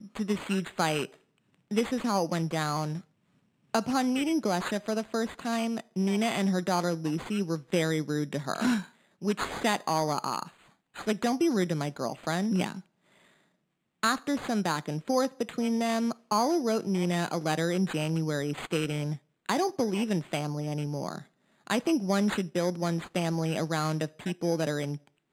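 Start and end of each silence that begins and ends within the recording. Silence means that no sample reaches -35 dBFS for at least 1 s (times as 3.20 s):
12.79–14.03 s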